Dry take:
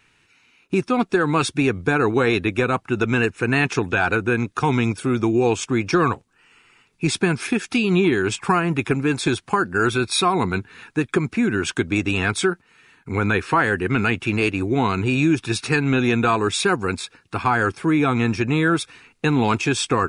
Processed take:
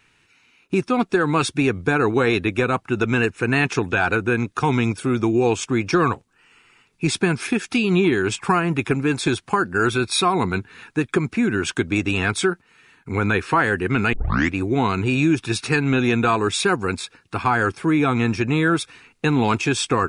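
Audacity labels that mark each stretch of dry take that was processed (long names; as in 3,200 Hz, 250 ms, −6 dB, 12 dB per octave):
14.130000	14.130000	tape start 0.42 s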